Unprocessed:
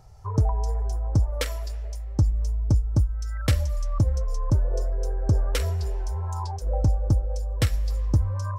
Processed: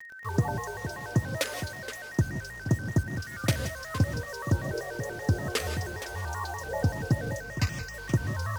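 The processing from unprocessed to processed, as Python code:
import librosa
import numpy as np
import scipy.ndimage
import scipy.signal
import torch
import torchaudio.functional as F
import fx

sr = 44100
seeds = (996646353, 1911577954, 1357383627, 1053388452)

y = scipy.signal.sosfilt(scipy.signal.butter(4, 110.0, 'highpass', fs=sr, output='sos'), x)
y = fx.quant_dither(y, sr, seeds[0], bits=8, dither='none')
y = fx.fixed_phaser(y, sr, hz=2500.0, stages=8, at=(7.4, 7.94))
y = y + 10.0 ** (-42.0 / 20.0) * np.sin(2.0 * np.pi * 1700.0 * np.arange(len(y)) / sr)
y = y + 10.0 ** (-11.5 / 20.0) * np.pad(y, (int(470 * sr / 1000.0), 0))[:len(y)]
y = fx.rev_gated(y, sr, seeds[1], gate_ms=200, shape='rising', drr_db=8.5)
y = fx.vibrato_shape(y, sr, shape='square', rate_hz=5.2, depth_cents=160.0)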